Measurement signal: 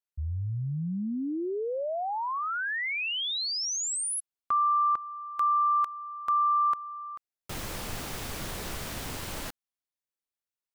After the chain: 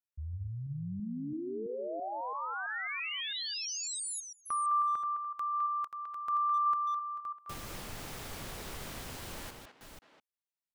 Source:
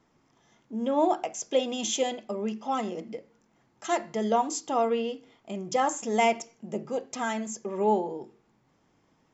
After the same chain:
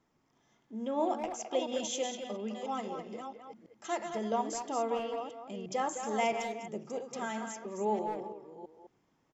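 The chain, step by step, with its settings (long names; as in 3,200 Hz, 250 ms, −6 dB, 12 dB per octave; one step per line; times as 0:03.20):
delay that plays each chunk backwards 333 ms, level −7.5 dB
far-end echo of a speakerphone 210 ms, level −7 dB
level −7.5 dB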